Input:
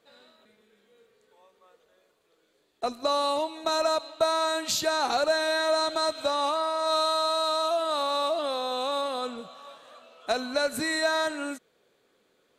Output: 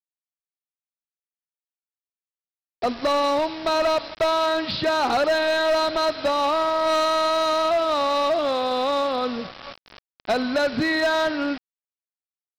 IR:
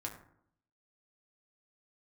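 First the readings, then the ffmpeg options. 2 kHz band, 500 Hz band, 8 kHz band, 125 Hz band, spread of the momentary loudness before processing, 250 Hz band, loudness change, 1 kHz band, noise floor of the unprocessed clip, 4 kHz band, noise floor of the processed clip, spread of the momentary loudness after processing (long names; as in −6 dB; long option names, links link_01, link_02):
+5.0 dB, +5.5 dB, −4.5 dB, can't be measured, 9 LU, +8.5 dB, +4.5 dB, +5.0 dB, −69 dBFS, +2.0 dB, below −85 dBFS, 8 LU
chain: -af "lowpass=3600,equalizer=frequency=110:width=0.49:gain=7.5,aresample=11025,acrusher=bits=6:mix=0:aa=0.000001,aresample=44100,volume=23dB,asoftclip=hard,volume=-23dB,volume=6dB"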